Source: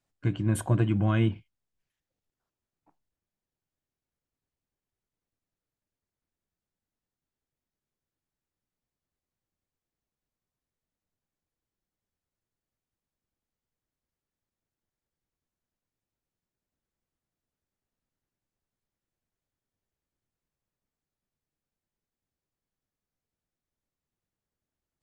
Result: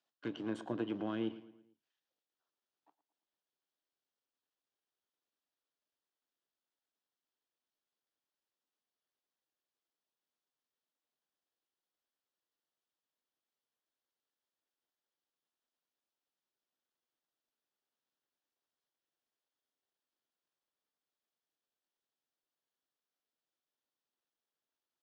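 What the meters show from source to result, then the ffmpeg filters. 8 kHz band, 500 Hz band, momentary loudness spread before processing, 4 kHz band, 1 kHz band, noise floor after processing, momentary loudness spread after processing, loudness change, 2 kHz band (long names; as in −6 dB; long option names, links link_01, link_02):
−24.5 dB, −7.0 dB, 7 LU, −7.0 dB, −10.0 dB, below −85 dBFS, 6 LU, −13.0 dB, −11.5 dB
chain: -filter_complex "[0:a]aeval=exprs='if(lt(val(0),0),0.447*val(0),val(0))':channel_layout=same,lowshelf=frequency=370:gain=-10.5,acrossover=split=480[link_01][link_02];[link_02]acompressor=threshold=-47dB:ratio=4[link_03];[link_01][link_03]amix=inputs=2:normalize=0,highpass=frequency=180:width=0.5412,highpass=frequency=180:width=1.3066,equalizer=frequency=190:width_type=q:width=4:gain=-9,equalizer=frequency=2200:width_type=q:width=4:gain=-7,equalizer=frequency=3300:width_type=q:width=4:gain=4,lowpass=frequency=5700:width=0.5412,lowpass=frequency=5700:width=1.3066,asplit=2[link_04][link_05];[link_05]adelay=112,lowpass=frequency=4100:poles=1,volume=-16dB,asplit=2[link_06][link_07];[link_07]adelay=112,lowpass=frequency=4100:poles=1,volume=0.47,asplit=2[link_08][link_09];[link_09]adelay=112,lowpass=frequency=4100:poles=1,volume=0.47,asplit=2[link_10][link_11];[link_11]adelay=112,lowpass=frequency=4100:poles=1,volume=0.47[link_12];[link_06][link_08][link_10][link_12]amix=inputs=4:normalize=0[link_13];[link_04][link_13]amix=inputs=2:normalize=0,volume=1.5dB"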